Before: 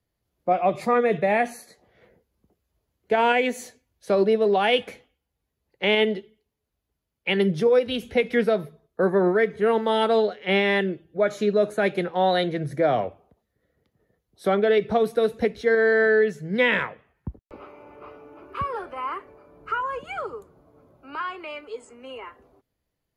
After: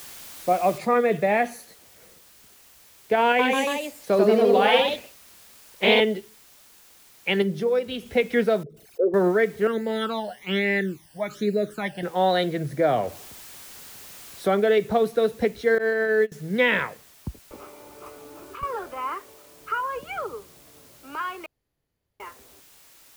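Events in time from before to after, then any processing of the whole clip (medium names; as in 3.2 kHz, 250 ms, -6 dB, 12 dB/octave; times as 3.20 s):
0.78 s: noise floor step -42 dB -53 dB
3.25–6.02 s: ever faster or slower copies 140 ms, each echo +1 st, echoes 3
7.42–8.06 s: feedback comb 98 Hz, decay 1.7 s, mix 40%
8.63–9.14 s: resonances exaggerated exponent 3
9.67–12.03 s: phase shifter stages 12, 1.2 Hz, lowest notch 390–1100 Hz
13.03–14.48 s: jump at every zero crossing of -40.5 dBFS
15.78–16.32 s: gate -19 dBFS, range -24 dB
18.06–18.63 s: three bands compressed up and down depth 100%
19.15–19.96 s: bass shelf 280 Hz -6.5 dB
21.46–22.20 s: room tone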